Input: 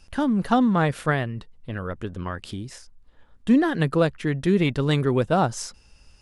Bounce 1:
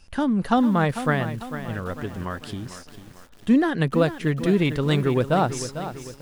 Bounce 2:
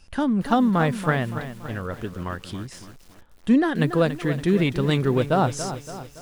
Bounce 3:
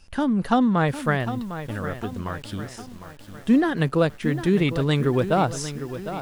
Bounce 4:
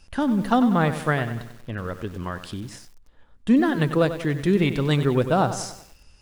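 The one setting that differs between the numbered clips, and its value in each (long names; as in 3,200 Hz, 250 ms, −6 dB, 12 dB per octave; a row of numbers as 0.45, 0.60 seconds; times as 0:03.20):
feedback echo at a low word length, delay time: 448, 283, 754, 95 milliseconds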